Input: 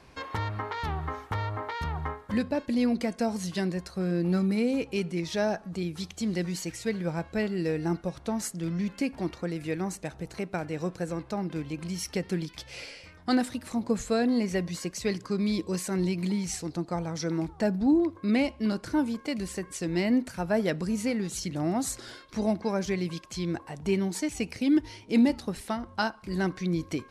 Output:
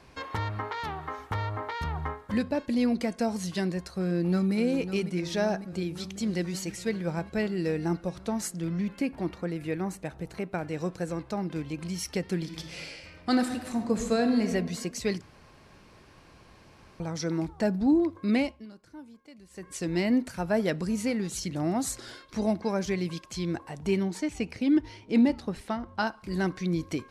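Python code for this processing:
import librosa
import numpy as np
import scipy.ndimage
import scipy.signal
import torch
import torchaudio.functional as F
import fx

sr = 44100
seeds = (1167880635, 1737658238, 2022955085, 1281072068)

y = fx.highpass(x, sr, hz=fx.line((0.68, 170.0), (1.18, 390.0)), slope=6, at=(0.68, 1.18), fade=0.02)
y = fx.echo_throw(y, sr, start_s=4.02, length_s=0.52, ms=550, feedback_pct=75, wet_db=-10.5)
y = fx.dynamic_eq(y, sr, hz=6200.0, q=0.81, threshold_db=-57.0, ratio=4.0, max_db=-7, at=(8.6, 10.65))
y = fx.reverb_throw(y, sr, start_s=12.36, length_s=2.08, rt60_s=1.4, drr_db=6.0)
y = fx.lowpass(y, sr, hz=3400.0, slope=6, at=(24.03, 26.07))
y = fx.edit(y, sr, fx.room_tone_fill(start_s=15.21, length_s=1.79),
    fx.fade_down_up(start_s=18.37, length_s=1.42, db=-19.5, fade_s=0.29), tone=tone)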